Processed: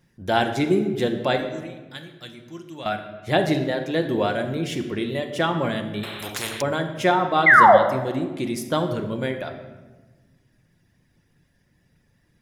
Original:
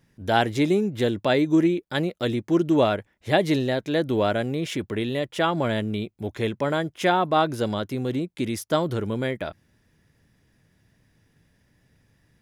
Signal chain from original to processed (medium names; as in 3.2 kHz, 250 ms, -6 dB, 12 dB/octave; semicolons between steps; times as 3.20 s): reverb removal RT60 0.87 s; 1.36–2.86 s: amplifier tone stack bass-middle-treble 5-5-5; 7.46–7.77 s: painted sound fall 510–2200 Hz -12 dBFS; simulated room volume 960 m³, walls mixed, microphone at 0.91 m; 6.03–6.62 s: spectrum-flattening compressor 4:1